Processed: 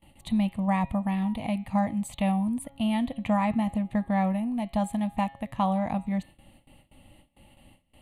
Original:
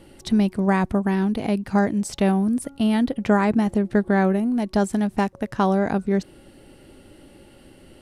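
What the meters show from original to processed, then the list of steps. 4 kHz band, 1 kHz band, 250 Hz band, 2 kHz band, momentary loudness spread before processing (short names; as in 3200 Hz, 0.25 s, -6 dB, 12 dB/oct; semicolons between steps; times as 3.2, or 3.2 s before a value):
-5.5 dB, -3.5 dB, -6.0 dB, -9.0 dB, 4 LU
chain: fixed phaser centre 1500 Hz, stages 6; de-hum 136.5 Hz, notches 32; gate with hold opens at -41 dBFS; gain -2.5 dB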